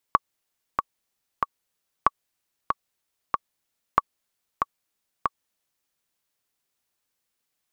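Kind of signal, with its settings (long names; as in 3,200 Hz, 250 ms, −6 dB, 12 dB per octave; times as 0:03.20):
click track 94 BPM, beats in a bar 3, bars 3, 1,130 Hz, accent 5.5 dB −3 dBFS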